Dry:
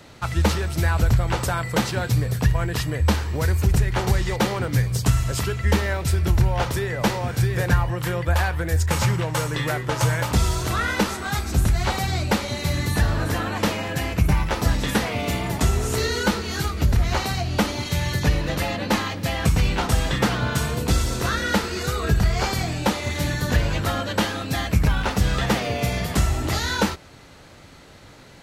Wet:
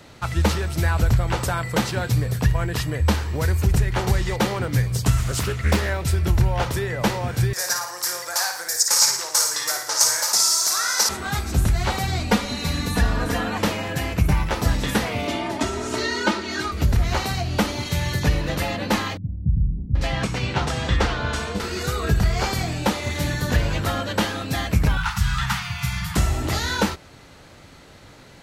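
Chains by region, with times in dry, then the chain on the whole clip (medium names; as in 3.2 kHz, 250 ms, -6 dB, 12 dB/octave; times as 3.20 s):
5.18–5.90 s: treble shelf 5.2 kHz +4.5 dB + loudspeaker Doppler distortion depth 0.67 ms
7.53–11.09 s: high-pass 870 Hz + resonant high shelf 4 kHz +10 dB, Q 3 + flutter echo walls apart 9.6 m, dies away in 0.55 s
12.19–13.57 s: treble shelf 12 kHz -5.5 dB + comb 4.2 ms, depth 64%
15.27–16.72 s: high-pass 170 Hz + distance through air 65 m + comb 3.2 ms, depth 78%
19.17–21.60 s: low-pass 6.5 kHz + bands offset in time lows, highs 780 ms, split 210 Hz
24.97–26.16 s: elliptic band-stop 170–910 Hz + peaking EQ 1.4 kHz +7 dB 0.25 oct
whole clip: none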